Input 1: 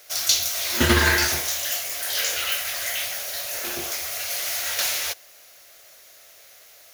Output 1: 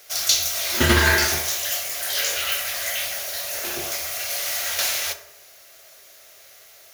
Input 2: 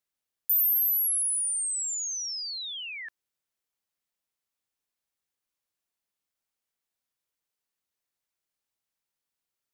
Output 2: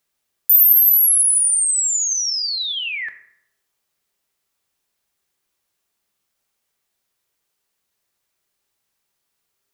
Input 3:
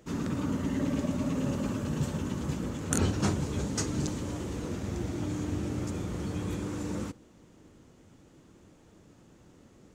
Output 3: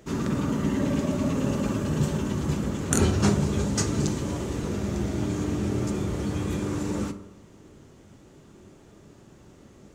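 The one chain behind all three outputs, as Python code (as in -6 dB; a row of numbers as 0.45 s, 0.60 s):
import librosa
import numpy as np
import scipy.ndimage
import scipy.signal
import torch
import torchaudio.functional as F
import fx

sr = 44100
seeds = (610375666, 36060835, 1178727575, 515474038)

y = fx.rev_fdn(x, sr, rt60_s=0.8, lf_ratio=1.05, hf_ratio=0.5, size_ms=15.0, drr_db=7.0)
y = librosa.util.normalize(y) * 10.0 ** (-3 / 20.0)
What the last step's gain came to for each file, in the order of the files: +0.5 dB, +11.5 dB, +5.0 dB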